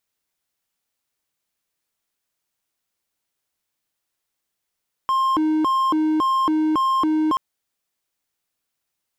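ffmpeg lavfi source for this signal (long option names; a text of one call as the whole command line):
ffmpeg -f lavfi -i "aevalsrc='0.188*(1-4*abs(mod((685.5*t+374.5/1.8*(0.5-abs(mod(1.8*t,1)-0.5)))+0.25,1)-0.5))':duration=2.28:sample_rate=44100" out.wav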